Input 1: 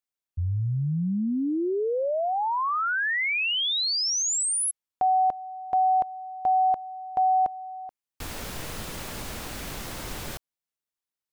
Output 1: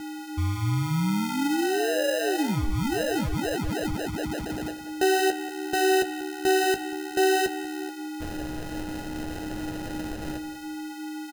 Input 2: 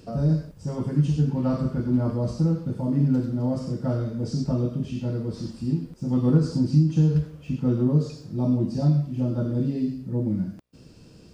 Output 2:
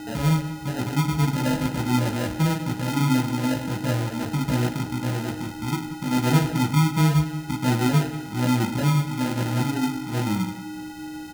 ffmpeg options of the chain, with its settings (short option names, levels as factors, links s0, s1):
-filter_complex "[0:a]highshelf=f=5300:g=-11,aeval=exprs='val(0)+0.02*sin(2*PI*3700*n/s)':c=same,acrusher=samples=39:mix=1:aa=0.000001,flanger=delay=9:depth=9:regen=-39:speed=0.52:shape=triangular,asplit=2[s0][s1];[s1]adelay=185,lowpass=f=3400:p=1,volume=0.2,asplit=2[s2][s3];[s3]adelay=185,lowpass=f=3400:p=1,volume=0.36,asplit=2[s4][s5];[s5]adelay=185,lowpass=f=3400:p=1,volume=0.36[s6];[s0][s2][s4][s6]amix=inputs=4:normalize=0,volume=1.58"